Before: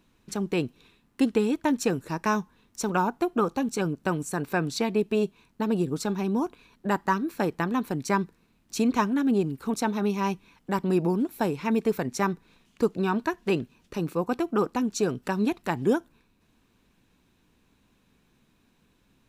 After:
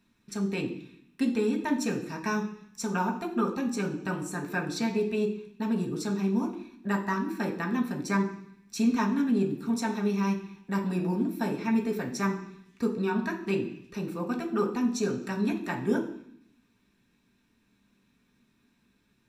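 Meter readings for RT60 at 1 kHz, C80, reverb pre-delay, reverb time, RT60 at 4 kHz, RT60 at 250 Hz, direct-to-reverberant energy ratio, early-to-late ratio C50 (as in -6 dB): 0.70 s, 12.5 dB, 3 ms, 0.65 s, 0.85 s, 0.95 s, -1.0 dB, 9.5 dB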